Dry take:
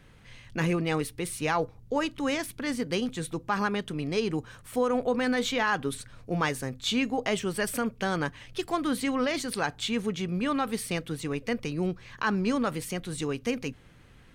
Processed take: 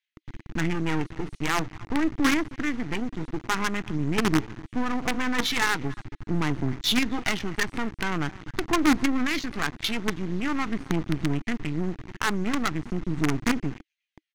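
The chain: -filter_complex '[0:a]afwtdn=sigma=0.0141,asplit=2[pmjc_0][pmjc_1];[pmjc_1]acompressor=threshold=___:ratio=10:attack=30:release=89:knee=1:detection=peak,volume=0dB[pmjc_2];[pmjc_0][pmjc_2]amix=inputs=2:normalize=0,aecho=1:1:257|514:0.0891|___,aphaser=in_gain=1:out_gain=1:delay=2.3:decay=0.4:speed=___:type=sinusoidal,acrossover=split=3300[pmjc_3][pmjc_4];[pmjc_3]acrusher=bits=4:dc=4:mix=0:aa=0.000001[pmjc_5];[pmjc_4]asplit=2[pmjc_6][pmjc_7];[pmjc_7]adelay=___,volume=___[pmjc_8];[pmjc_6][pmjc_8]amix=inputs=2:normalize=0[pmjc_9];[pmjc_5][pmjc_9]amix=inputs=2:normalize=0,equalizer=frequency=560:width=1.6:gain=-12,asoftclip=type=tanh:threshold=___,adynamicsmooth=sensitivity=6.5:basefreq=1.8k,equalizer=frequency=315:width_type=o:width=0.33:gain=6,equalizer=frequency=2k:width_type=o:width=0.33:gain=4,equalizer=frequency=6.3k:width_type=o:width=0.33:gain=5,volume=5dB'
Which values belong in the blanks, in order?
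-40dB, 0.0187, 0.45, 19, -4.5dB, -20.5dB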